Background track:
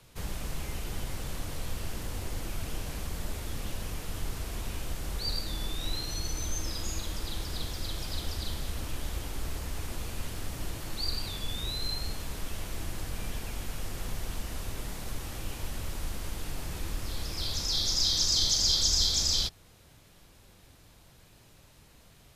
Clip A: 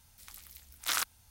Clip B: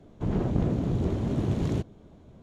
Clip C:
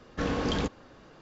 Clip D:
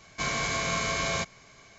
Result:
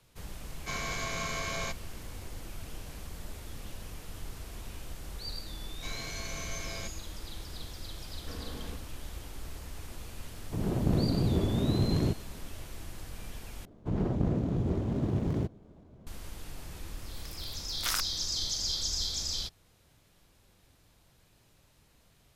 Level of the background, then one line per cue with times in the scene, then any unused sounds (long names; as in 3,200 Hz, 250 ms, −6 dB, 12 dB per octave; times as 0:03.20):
background track −7 dB
0:00.48: mix in D −6.5 dB
0:05.64: mix in D −11.5 dB + parametric band 1,100 Hz −6 dB
0:08.09: mix in C −16.5 dB
0:10.31: mix in B −6 dB + automatic gain control gain up to 5.5 dB
0:13.65: overwrite with B −3 dB + running median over 15 samples
0:16.97: mix in A −1.5 dB